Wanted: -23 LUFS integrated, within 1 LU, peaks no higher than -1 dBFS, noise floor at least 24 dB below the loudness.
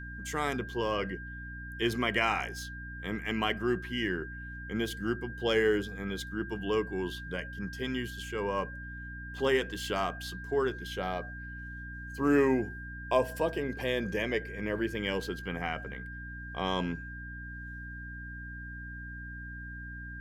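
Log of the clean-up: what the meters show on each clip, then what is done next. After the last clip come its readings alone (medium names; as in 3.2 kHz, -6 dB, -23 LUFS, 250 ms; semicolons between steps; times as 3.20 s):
hum 60 Hz; highest harmonic 300 Hz; hum level -42 dBFS; steady tone 1.6 kHz; tone level -43 dBFS; loudness -33.5 LUFS; peak level -13.0 dBFS; loudness target -23.0 LUFS
-> de-hum 60 Hz, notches 5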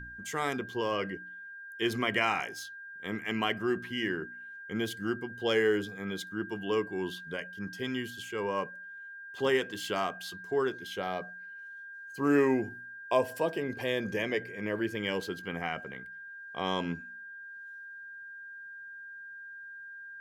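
hum not found; steady tone 1.6 kHz; tone level -43 dBFS
-> band-stop 1.6 kHz, Q 30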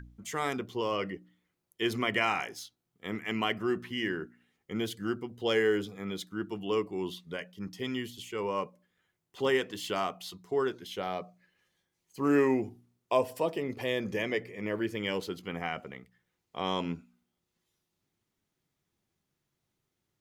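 steady tone not found; loudness -32.5 LUFS; peak level -12.5 dBFS; loudness target -23.0 LUFS
-> trim +9.5 dB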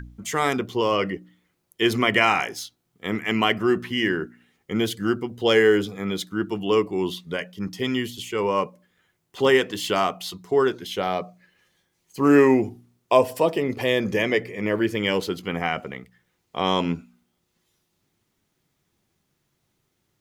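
loudness -23.0 LUFS; peak level -3.0 dBFS; noise floor -74 dBFS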